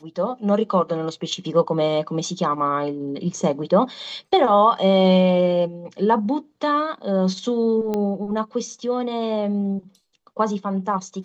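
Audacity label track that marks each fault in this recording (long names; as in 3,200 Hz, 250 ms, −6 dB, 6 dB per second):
7.940000	7.940000	click −13 dBFS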